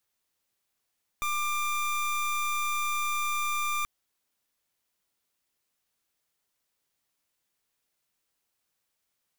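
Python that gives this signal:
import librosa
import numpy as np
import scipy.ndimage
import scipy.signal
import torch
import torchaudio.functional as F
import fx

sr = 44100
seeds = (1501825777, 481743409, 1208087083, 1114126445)

y = fx.pulse(sr, length_s=2.63, hz=1190.0, level_db=-29.0, duty_pct=26)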